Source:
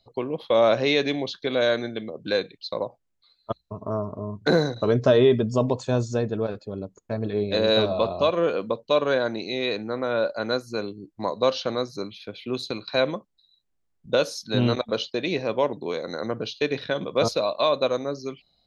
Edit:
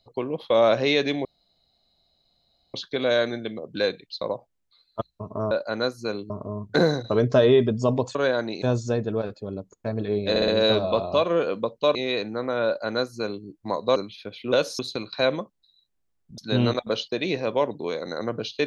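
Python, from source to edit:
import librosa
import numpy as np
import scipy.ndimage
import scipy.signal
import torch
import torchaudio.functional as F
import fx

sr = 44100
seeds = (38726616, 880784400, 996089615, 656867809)

y = fx.edit(x, sr, fx.insert_room_tone(at_s=1.25, length_s=1.49),
    fx.stutter(start_s=7.55, slice_s=0.06, count=4),
    fx.move(start_s=9.02, length_s=0.47, to_s=5.87),
    fx.duplicate(start_s=10.2, length_s=0.79, to_s=4.02),
    fx.cut(start_s=11.5, length_s=0.48),
    fx.move(start_s=14.13, length_s=0.27, to_s=12.54), tone=tone)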